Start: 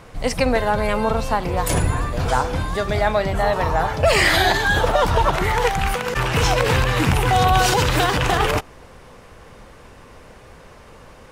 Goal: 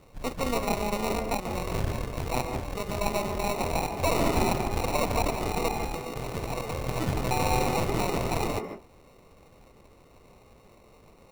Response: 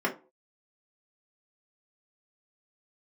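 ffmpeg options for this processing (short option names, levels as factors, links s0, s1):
-filter_complex "[0:a]asplit=3[s0][s1][s2];[s0]afade=t=out:st=6:d=0.02[s3];[s1]acompressor=threshold=0.112:ratio=6,afade=t=in:st=6:d=0.02,afade=t=out:st=6.87:d=0.02[s4];[s2]afade=t=in:st=6.87:d=0.02[s5];[s3][s4][s5]amix=inputs=3:normalize=0,acrusher=samples=27:mix=1:aa=0.000001,aeval=exprs='0.631*(cos(1*acos(clip(val(0)/0.631,-1,1)))-cos(1*PI/2))+0.0708*(cos(3*acos(clip(val(0)/0.631,-1,1)))-cos(3*PI/2))+0.0631*(cos(6*acos(clip(val(0)/0.631,-1,1)))-cos(6*PI/2))':c=same,asplit=2[s6][s7];[1:a]atrim=start_sample=2205,adelay=145[s8];[s7][s8]afir=irnorm=-1:irlink=0,volume=0.141[s9];[s6][s9]amix=inputs=2:normalize=0,volume=0.376"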